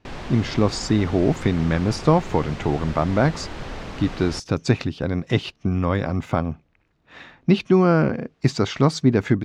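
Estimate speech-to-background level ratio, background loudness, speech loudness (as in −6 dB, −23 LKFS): 13.0 dB, −35.0 LKFS, −22.0 LKFS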